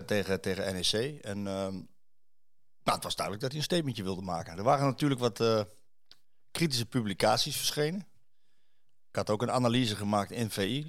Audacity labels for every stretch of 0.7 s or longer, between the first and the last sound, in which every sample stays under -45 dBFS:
1.860000	2.860000	silence
8.030000	9.150000	silence